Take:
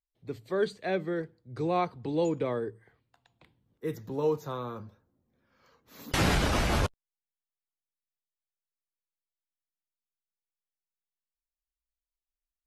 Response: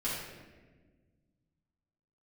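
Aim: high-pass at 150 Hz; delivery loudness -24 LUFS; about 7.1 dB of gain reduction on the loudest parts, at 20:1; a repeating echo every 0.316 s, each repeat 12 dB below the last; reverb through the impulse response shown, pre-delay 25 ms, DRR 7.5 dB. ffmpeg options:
-filter_complex "[0:a]highpass=150,acompressor=threshold=-29dB:ratio=20,aecho=1:1:316|632|948:0.251|0.0628|0.0157,asplit=2[a][b];[1:a]atrim=start_sample=2205,adelay=25[c];[b][c]afir=irnorm=-1:irlink=0,volume=-13dB[d];[a][d]amix=inputs=2:normalize=0,volume=11.5dB"

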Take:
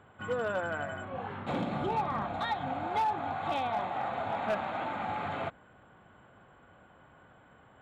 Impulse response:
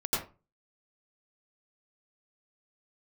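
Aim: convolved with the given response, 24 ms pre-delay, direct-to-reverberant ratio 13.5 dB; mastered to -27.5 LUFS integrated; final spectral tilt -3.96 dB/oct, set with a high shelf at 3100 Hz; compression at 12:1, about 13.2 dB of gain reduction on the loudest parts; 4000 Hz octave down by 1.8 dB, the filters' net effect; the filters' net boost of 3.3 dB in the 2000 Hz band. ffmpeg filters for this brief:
-filter_complex "[0:a]equalizer=f=2k:t=o:g=4.5,highshelf=f=3.1k:g=5.5,equalizer=f=4k:t=o:g=-8,acompressor=threshold=-39dB:ratio=12,asplit=2[a][b];[1:a]atrim=start_sample=2205,adelay=24[c];[b][c]afir=irnorm=-1:irlink=0,volume=-21.5dB[d];[a][d]amix=inputs=2:normalize=0,volume=15dB"

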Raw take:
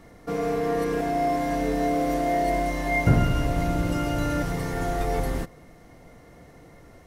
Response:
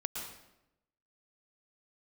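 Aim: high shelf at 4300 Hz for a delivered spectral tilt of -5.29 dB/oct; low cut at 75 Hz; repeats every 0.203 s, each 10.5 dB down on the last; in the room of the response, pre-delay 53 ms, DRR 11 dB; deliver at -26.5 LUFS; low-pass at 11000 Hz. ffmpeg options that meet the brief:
-filter_complex "[0:a]highpass=75,lowpass=11k,highshelf=f=4.3k:g=9,aecho=1:1:203|406|609:0.299|0.0896|0.0269,asplit=2[a][b];[1:a]atrim=start_sample=2205,adelay=53[c];[b][c]afir=irnorm=-1:irlink=0,volume=-13dB[d];[a][d]amix=inputs=2:normalize=0,volume=-1.5dB"

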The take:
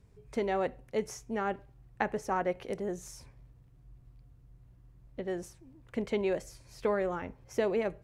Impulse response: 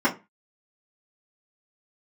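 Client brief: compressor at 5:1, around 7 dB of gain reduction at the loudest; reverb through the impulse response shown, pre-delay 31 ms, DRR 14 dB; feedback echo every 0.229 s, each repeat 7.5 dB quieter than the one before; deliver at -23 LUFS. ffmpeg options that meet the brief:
-filter_complex "[0:a]acompressor=threshold=-33dB:ratio=5,aecho=1:1:229|458|687|916|1145:0.422|0.177|0.0744|0.0312|0.0131,asplit=2[a][b];[1:a]atrim=start_sample=2205,adelay=31[c];[b][c]afir=irnorm=-1:irlink=0,volume=-30dB[d];[a][d]amix=inputs=2:normalize=0,volume=16dB"

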